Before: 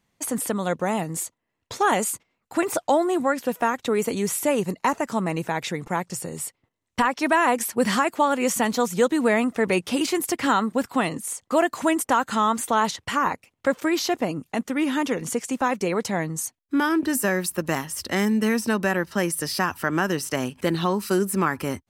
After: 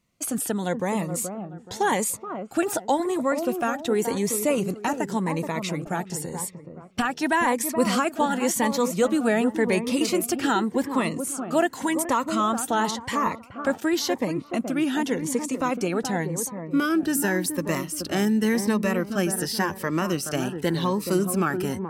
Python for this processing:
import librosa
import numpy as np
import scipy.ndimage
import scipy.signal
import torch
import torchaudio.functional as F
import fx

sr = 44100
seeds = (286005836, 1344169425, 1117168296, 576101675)

y = fx.echo_wet_lowpass(x, sr, ms=426, feedback_pct=33, hz=1200.0, wet_db=-7.5)
y = fx.notch_cascade(y, sr, direction='rising', hz=0.9)